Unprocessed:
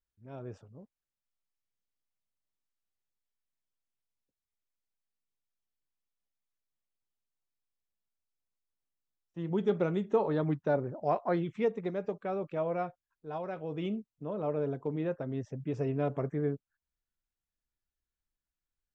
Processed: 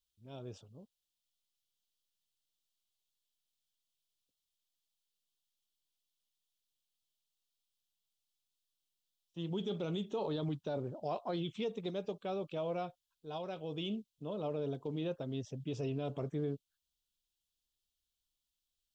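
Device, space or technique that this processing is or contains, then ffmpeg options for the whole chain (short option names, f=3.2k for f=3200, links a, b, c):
over-bright horn tweeter: -af "highshelf=f=2.5k:t=q:w=3:g=9,alimiter=level_in=1dB:limit=-24dB:level=0:latency=1:release=19,volume=-1dB,volume=-3.5dB"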